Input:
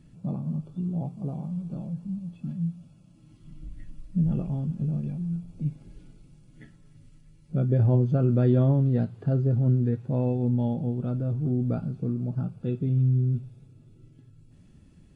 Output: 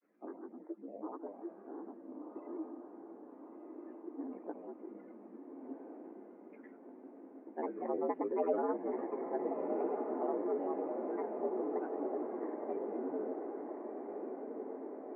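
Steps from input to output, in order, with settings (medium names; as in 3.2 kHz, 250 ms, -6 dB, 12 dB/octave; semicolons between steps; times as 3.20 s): granulator, pitch spread up and down by 7 st; on a send: echo that smears into a reverb 1378 ms, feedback 64%, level -4.5 dB; on the sum: mistuned SSB +78 Hz 270–2000 Hz; trim -5 dB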